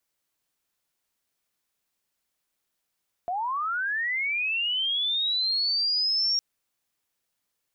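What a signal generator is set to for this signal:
glide linear 680 Hz → 5,600 Hz −26 dBFS → −21.5 dBFS 3.11 s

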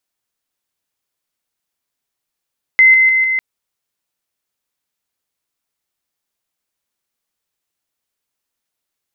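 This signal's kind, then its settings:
level staircase 2,060 Hz −4.5 dBFS, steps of −3 dB, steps 4, 0.15 s 0.00 s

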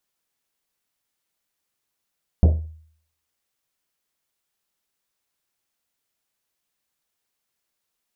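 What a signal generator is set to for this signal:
drum after Risset, pitch 79 Hz, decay 0.59 s, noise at 380 Hz, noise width 560 Hz, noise 15%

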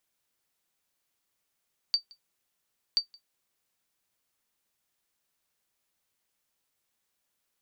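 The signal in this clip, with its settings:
ping with an echo 4,620 Hz, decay 0.11 s, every 1.03 s, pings 2, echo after 0.17 s, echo −27 dB −15.5 dBFS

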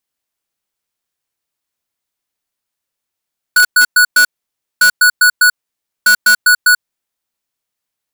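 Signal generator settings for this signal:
beeps in groups square 1,470 Hz, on 0.09 s, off 0.11 s, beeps 4, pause 0.56 s, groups 3, −7.5 dBFS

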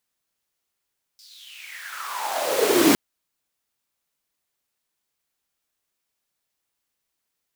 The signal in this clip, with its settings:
filter sweep on noise pink, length 1.76 s highpass, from 5,000 Hz, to 260 Hz, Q 6.9, exponential, gain ramp +34 dB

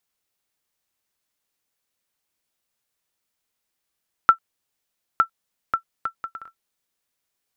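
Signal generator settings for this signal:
bouncing ball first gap 0.91 s, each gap 0.59, 1,340 Hz, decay 96 ms −2 dBFS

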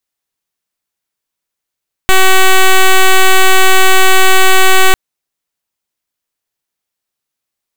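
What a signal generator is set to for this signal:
pulse wave 378 Hz, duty 7% −4.5 dBFS 2.85 s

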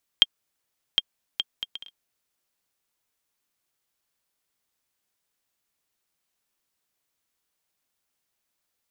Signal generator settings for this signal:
bouncing ball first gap 0.76 s, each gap 0.55, 3,200 Hz, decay 35 ms −2 dBFS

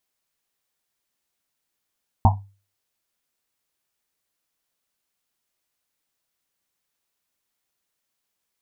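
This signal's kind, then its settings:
drum after Risset, pitch 99 Hz, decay 0.36 s, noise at 850 Hz, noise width 300 Hz, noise 35%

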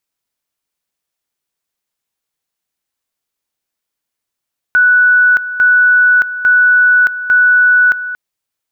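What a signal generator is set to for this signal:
tone at two levels in turn 1,480 Hz −5.5 dBFS, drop 13 dB, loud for 0.62 s, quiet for 0.23 s, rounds 4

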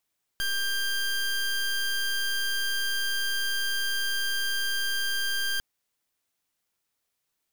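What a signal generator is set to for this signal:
pulse wave 1,590 Hz, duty 20% −27.5 dBFS 5.20 s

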